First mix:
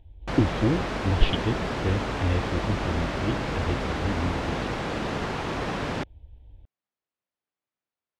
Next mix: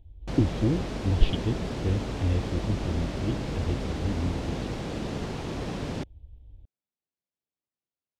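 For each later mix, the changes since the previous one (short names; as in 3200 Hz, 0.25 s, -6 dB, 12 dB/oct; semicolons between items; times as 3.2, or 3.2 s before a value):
master: add bell 1400 Hz -11 dB 2.5 oct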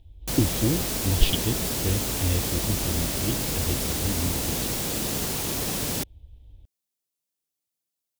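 master: remove tape spacing loss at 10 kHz 29 dB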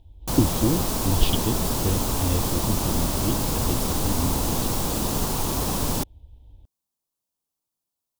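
background: remove HPF 140 Hz 6 dB/oct; master: add graphic EQ 250/1000/2000 Hz +3/+10/-6 dB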